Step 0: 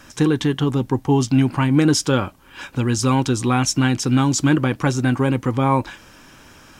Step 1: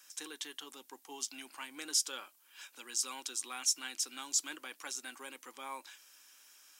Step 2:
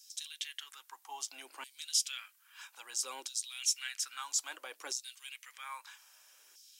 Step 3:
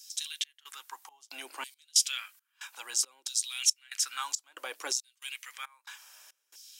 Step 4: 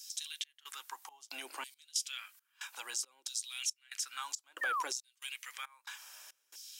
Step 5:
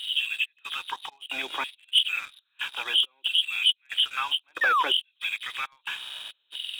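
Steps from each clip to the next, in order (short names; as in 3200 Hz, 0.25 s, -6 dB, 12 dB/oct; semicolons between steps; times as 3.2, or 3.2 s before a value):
HPF 260 Hz 24 dB/oct; differentiator; gain -6.5 dB
LFO high-pass saw down 0.61 Hz 360–5000 Hz; gain -1.5 dB
step gate "xx.xx.xx." 69 bpm -24 dB; gain +7 dB
compressor 2:1, threshold -44 dBFS, peak gain reduction 14 dB; painted sound fall, 4.61–4.83, 940–1900 Hz -35 dBFS; gain +1.5 dB
nonlinear frequency compression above 2400 Hz 4:1; sample leveller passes 2; gain +4.5 dB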